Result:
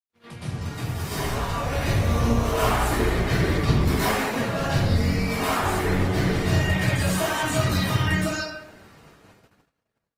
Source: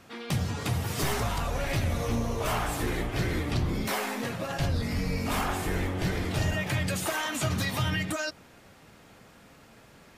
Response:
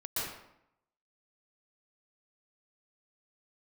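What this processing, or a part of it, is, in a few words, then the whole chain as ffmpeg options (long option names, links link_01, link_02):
speakerphone in a meeting room: -filter_complex "[0:a]asettb=1/sr,asplit=3[link_01][link_02][link_03];[link_01]atrim=end=5.054[link_04];[link_02]atrim=start=5.05:end=5.48,asetpts=PTS-STARTPTS,afade=type=in:duration=0.004:curve=qsin,afade=type=out:start_time=0.426:duration=0.004:curve=qsin,highpass=frequency=280:poles=1[link_05];[link_03]atrim=start=5.476[link_06];[link_04][link_05]acrossfade=duration=0.004:curve1=hsin:curve2=qsin[link_07];[link_07][link_06]acrossfade=duration=0.004:curve1=qsin:curve2=hsin[link_08];[1:a]atrim=start_sample=2205[link_09];[link_08][link_09]afir=irnorm=-1:irlink=0,dynaudnorm=framelen=350:gausssize=9:maxgain=13dB,agate=range=-44dB:threshold=-43dB:ratio=16:detection=peak,volume=-7dB" -ar 48000 -c:a libopus -b:a 24k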